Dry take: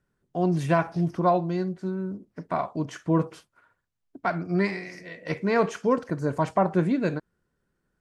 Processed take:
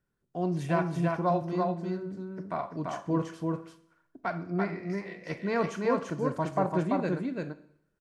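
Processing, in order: 4.50–4.90 s: low-pass 1.2 kHz 6 dB/octave; delay 339 ms -3 dB; Schroeder reverb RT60 0.7 s, combs from 27 ms, DRR 13.5 dB; trim -6 dB

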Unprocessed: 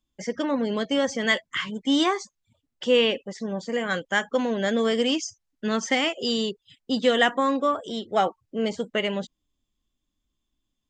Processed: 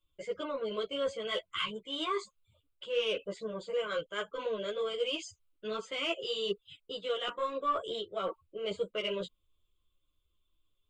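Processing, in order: reverse; compression 8:1, threshold -29 dBFS, peak gain reduction 14 dB; reverse; static phaser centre 1.2 kHz, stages 8; saturation -24 dBFS, distortion -24 dB; three-phase chorus; trim +5 dB

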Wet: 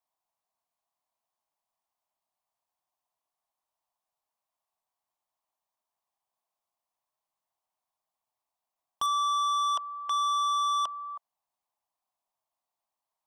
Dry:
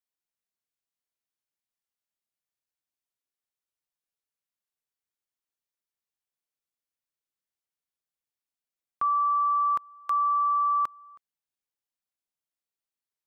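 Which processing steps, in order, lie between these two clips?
high-order bell 840 Hz +16 dB 1.1 oct; saturation -26 dBFS, distortion -8 dB; 9.06–11.09 s: distance through air 55 m

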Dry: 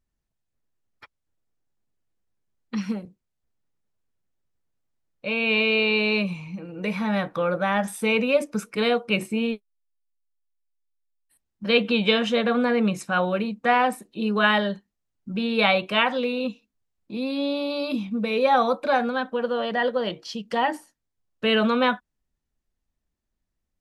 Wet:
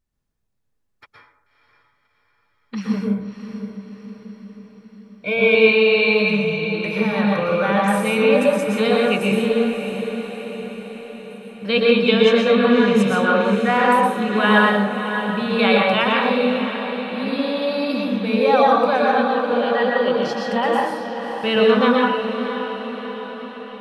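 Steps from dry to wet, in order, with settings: 2.93–5.55 s: rippled EQ curve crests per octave 1.7, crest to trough 17 dB; echo that smears into a reverb 588 ms, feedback 58%, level -9 dB; plate-style reverb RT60 0.79 s, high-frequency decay 0.5×, pre-delay 105 ms, DRR -2.5 dB

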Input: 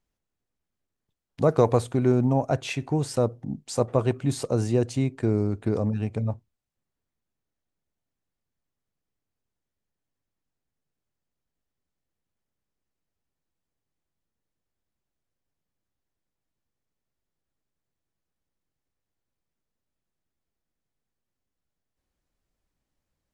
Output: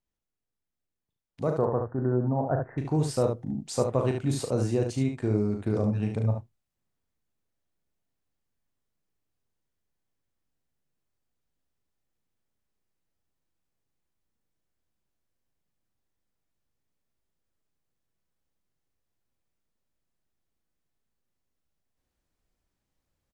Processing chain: 1.58–2.78 s: steep low-pass 1.8 kHz 96 dB/octave; early reflections 38 ms -7 dB, 72 ms -6 dB; gain riding within 4 dB 0.5 s; trim -4 dB

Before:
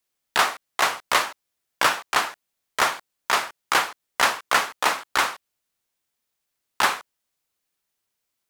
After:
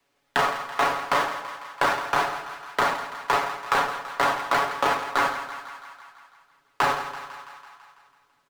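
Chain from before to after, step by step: square wave that keeps the level; low-pass 1.4 kHz 6 dB/octave; bass shelf 210 Hz -4.5 dB; comb 7.1 ms, depth 72%; peak limiter -12 dBFS, peak gain reduction 8 dB; two-band feedback delay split 820 Hz, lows 105 ms, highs 166 ms, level -12 dB; three bands compressed up and down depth 40%

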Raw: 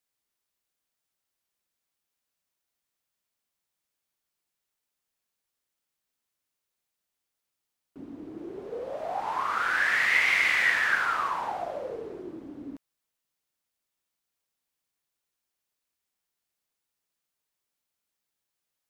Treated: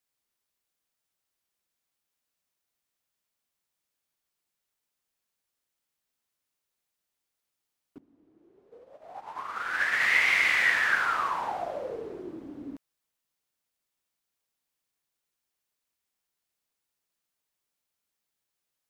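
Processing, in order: 7.98–10.01 s: upward expansion 2.5:1, over -38 dBFS

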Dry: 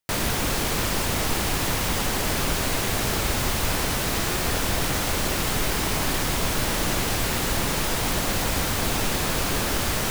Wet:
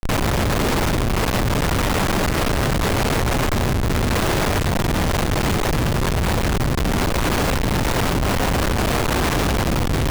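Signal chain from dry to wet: wind noise 120 Hz -20 dBFS; Schmitt trigger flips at -23.5 dBFS

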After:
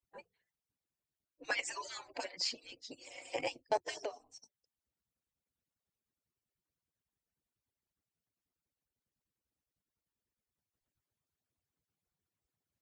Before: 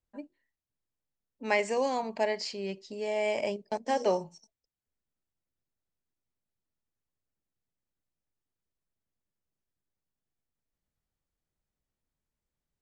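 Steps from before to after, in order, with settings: harmonic-percussive separation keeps percussive; 3.89–4.29 s: compression 10:1, threshold -40 dBFS, peak gain reduction 17 dB; trim +2 dB

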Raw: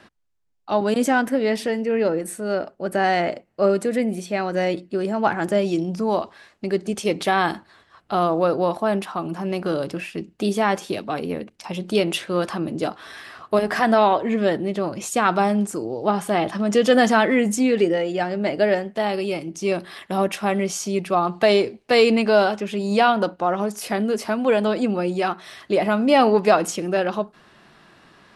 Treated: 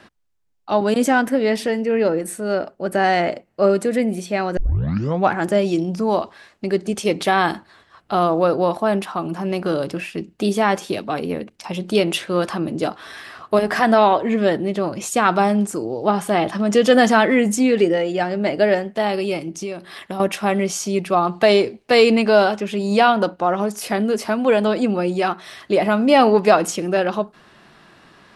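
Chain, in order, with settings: 4.57 s: tape start 0.75 s; 19.55–20.20 s: compression 6:1, threshold -28 dBFS, peak gain reduction 10.5 dB; trim +2.5 dB

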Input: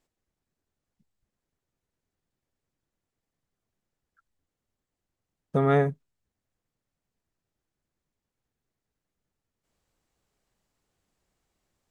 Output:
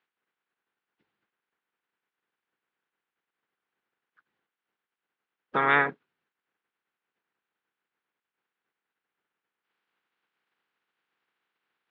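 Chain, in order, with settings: spectral peaks clipped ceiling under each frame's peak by 23 dB; cabinet simulation 240–3200 Hz, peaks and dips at 270 Hz -4 dB, 610 Hz -9 dB, 1.5 kHz +5 dB

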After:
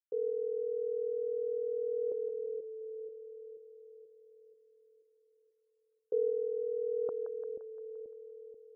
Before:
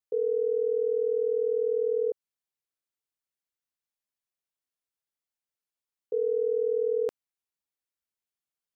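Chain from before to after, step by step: two-band feedback delay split 460 Hz, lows 484 ms, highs 173 ms, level -10.5 dB; gain riding within 4 dB 0.5 s; loudest bins only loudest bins 64; trim -4.5 dB

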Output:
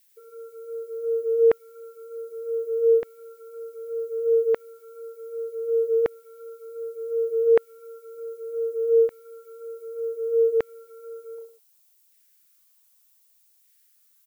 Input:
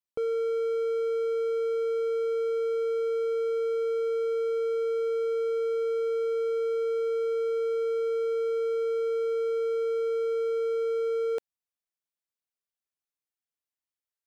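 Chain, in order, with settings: spectral contrast enhancement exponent 2.3; phase shifter stages 12, 2.8 Hz, lowest notch 350–3100 Hz; on a send: reverse bouncing-ball echo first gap 30 ms, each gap 1.15×, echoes 5; on the sum: added noise violet -70 dBFS; LFO high-pass saw down 0.66 Hz 440–1900 Hz; trim +8 dB

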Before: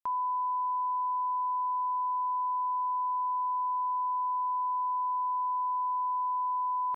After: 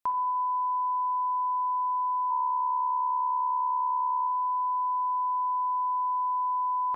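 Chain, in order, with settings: 2.30–4.27 s: whistle 930 Hz -35 dBFS; spring tank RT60 1.3 s, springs 42/59 ms, chirp 35 ms, DRR 8 dB; trim +4.5 dB

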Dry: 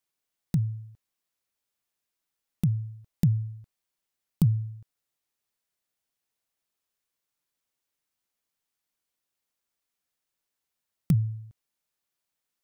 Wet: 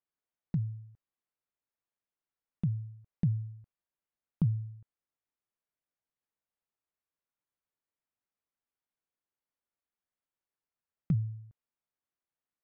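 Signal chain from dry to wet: low-pass 1.9 kHz 12 dB/octave; trim -6 dB

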